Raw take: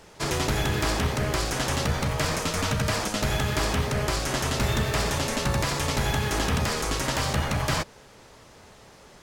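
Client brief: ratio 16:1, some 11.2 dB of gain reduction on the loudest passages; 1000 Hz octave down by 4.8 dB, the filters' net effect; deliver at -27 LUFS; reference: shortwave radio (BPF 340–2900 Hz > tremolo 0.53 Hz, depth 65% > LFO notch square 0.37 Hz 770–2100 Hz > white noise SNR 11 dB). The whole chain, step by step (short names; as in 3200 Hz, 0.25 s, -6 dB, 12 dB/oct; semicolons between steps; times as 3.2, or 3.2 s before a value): bell 1000 Hz -6 dB; compressor 16:1, threshold -32 dBFS; BPF 340–2900 Hz; tremolo 0.53 Hz, depth 65%; LFO notch square 0.37 Hz 770–2100 Hz; white noise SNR 11 dB; gain +20 dB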